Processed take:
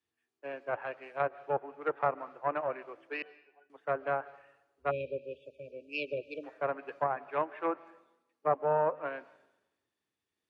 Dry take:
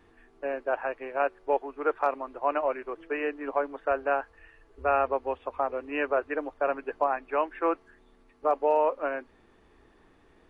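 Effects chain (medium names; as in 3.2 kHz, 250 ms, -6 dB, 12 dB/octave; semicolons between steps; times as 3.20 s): 3.22–3.70 s: pitch-class resonator F#, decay 0.17 s; Chebyshev shaper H 2 -10 dB, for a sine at -10.5 dBFS; high-pass 100 Hz 24 dB/octave; treble shelf 2.8 kHz +11 dB; algorithmic reverb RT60 1.6 s, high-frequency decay 0.65×, pre-delay 100 ms, DRR 17 dB; 4.91–6.44 s: spectral selection erased 630–2300 Hz; low-pass that closes with the level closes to 1.4 kHz, closed at -20.5 dBFS; three bands expanded up and down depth 70%; trim -7 dB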